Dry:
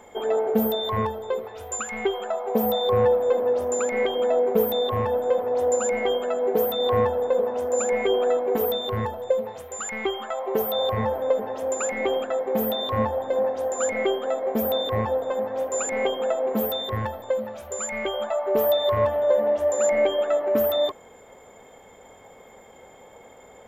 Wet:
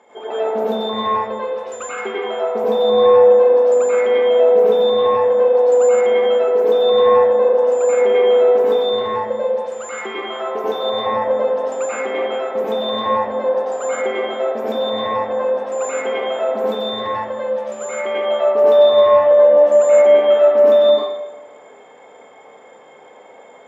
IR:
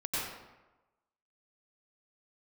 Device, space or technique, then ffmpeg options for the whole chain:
supermarket ceiling speaker: -filter_complex "[0:a]highpass=290,lowpass=5400[link_01];[1:a]atrim=start_sample=2205[link_02];[link_01][link_02]afir=irnorm=-1:irlink=0"

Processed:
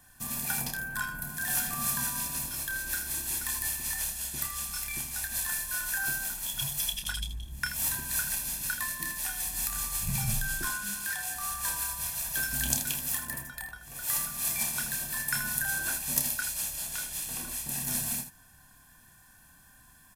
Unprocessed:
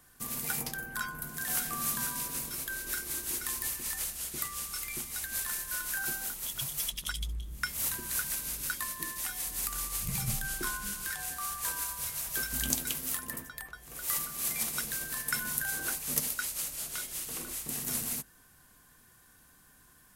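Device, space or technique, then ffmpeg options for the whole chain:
slapback doubling: -filter_complex "[0:a]asettb=1/sr,asplit=3[link_01][link_02][link_03];[link_01]atrim=end=10.654[link_04];[link_02]atrim=start=10.65:end=11.36,asetpts=PTS-STARTPTS,afade=type=in:duration=0.004:curve=qsin,afade=type=out:start_time=0.706:duration=0.004:curve=qsin,highpass=frequency=170:poles=1[link_05];[link_03]atrim=start=11.356[link_06];[link_04][link_05]acrossfade=duration=0.004:curve1=hsin:curve2=qsin[link_07];[link_07][link_06]acrossfade=duration=0.004:curve1=qsin:curve2=hsin,asplit=3[link_08][link_09][link_10];[link_09]adelay=29,volume=-7dB[link_11];[link_10]adelay=80,volume=-10.5dB[link_12];[link_08][link_11][link_12]amix=inputs=3:normalize=0,aecho=1:1:1.2:0.63"

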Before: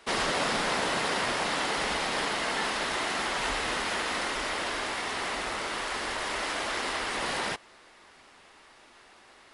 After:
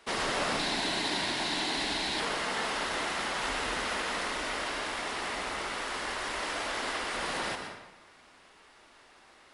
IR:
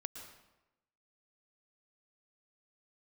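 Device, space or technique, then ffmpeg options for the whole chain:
bathroom: -filter_complex "[1:a]atrim=start_sample=2205[link_01];[0:a][link_01]afir=irnorm=-1:irlink=0,asettb=1/sr,asplit=3[link_02][link_03][link_04];[link_02]atrim=end=0.594[link_05];[link_03]atrim=start=0.59:end=2.2,asetpts=PTS-STARTPTS,afade=type=in:duration=0.004:curve=qsin,afade=type=out:start_time=1.606:duration=0.004:curve=qsin,equalizer=frequency=315:width_type=o:width=0.33:gain=6,equalizer=frequency=500:width_type=o:width=0.33:gain=-11,equalizer=frequency=1250:width_type=o:width=0.33:gain=-11,equalizer=frequency=4000:width_type=o:width=0.33:gain=9[link_06];[link_04]atrim=start=2.196[link_07];[link_05][link_06]acrossfade=duration=0.004:curve1=hsin:curve2=qsin[link_08];[link_08][link_07]acrossfade=duration=0.004:curve1=qsin:curve2=hsin"

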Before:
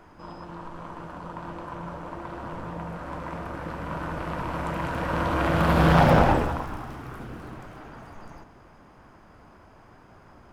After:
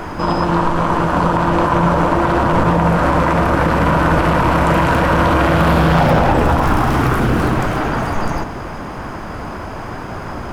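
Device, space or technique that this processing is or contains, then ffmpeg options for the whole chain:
loud club master: -af "acompressor=threshold=-25dB:ratio=3,asoftclip=type=hard:threshold=-19dB,alimiter=level_in=29.5dB:limit=-1dB:release=50:level=0:latency=1,volume=-4.5dB"

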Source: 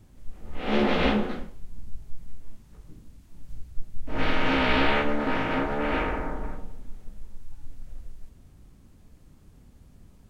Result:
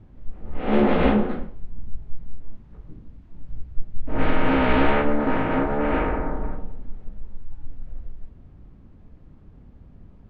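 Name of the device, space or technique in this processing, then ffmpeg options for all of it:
phone in a pocket: -af "lowpass=3300,highshelf=frequency=2000:gain=-11.5,volume=5.5dB"

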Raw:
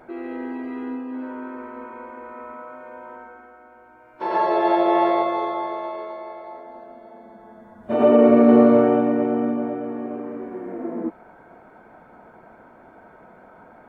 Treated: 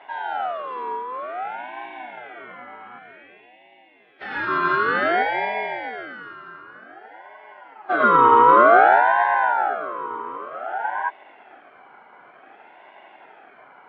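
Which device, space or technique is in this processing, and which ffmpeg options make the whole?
voice changer toy: -filter_complex "[0:a]asettb=1/sr,asplit=3[link_01][link_02][link_03];[link_01]atrim=end=2.984[link_04];[link_02]atrim=start=2.98:end=4.47,asetpts=PTS-STARTPTS,afade=type=in:duration=0.004:curve=qsin,afade=type=out:start_time=1.486:duration=0.004:curve=qsin,highpass=670[link_05];[link_03]atrim=start=4.466[link_06];[link_04][link_05]acrossfade=duration=0.004:curve1=hsin:curve2=qsin[link_07];[link_07][link_06]acrossfade=duration=0.004:curve1=qsin:curve2=hsin,aeval=exprs='val(0)*sin(2*PI*1000*n/s+1000*0.3/0.54*sin(2*PI*0.54*n/s))':channel_layout=same,highpass=520,equalizer=frequency=520:width_type=q:width=4:gain=-8,equalizer=frequency=760:width_type=q:width=4:gain=7,equalizer=frequency=1200:width_type=q:width=4:gain=-5,equalizer=frequency=1800:width_type=q:width=4:gain=-10,equalizer=frequency=2600:width_type=q:width=4:gain=-7,lowpass=frequency=3700:width=0.5412,lowpass=frequency=3700:width=1.3066,volume=7.5dB"

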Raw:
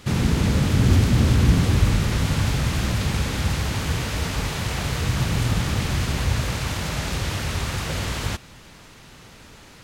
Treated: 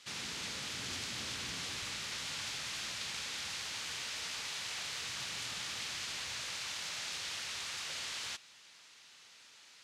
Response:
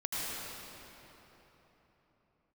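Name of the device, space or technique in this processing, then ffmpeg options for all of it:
piezo pickup straight into a mixer: -af "lowpass=5100,aderivative"

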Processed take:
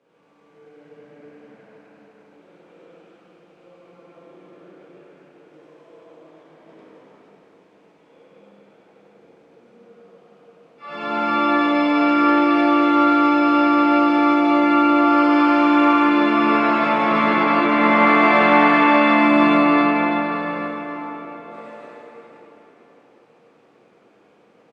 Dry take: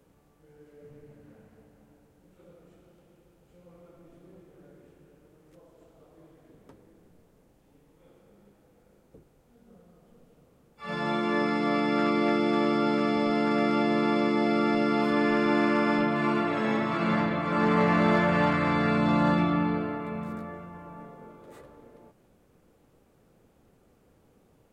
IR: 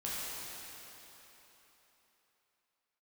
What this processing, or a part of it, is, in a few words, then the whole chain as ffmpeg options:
station announcement: -filter_complex "[0:a]highpass=310,lowpass=4200,equalizer=frequency=2400:width_type=o:width=0.27:gain=4.5,aecho=1:1:99.13|262.4:1|0.794[link_01];[1:a]atrim=start_sample=2205[link_02];[link_01][link_02]afir=irnorm=-1:irlink=0,volume=3dB"

